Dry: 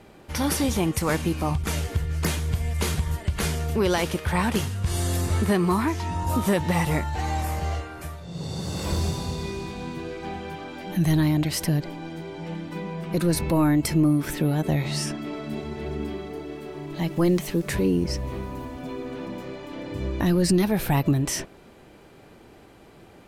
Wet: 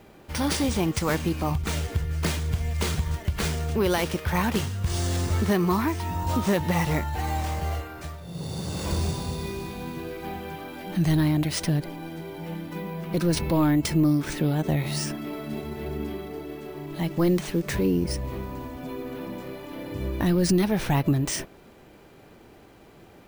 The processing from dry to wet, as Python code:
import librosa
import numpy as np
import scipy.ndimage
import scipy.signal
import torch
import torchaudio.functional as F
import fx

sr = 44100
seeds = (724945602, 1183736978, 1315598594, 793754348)

y = np.repeat(x[::3], 3)[:len(x)]
y = F.gain(torch.from_numpy(y), -1.0).numpy()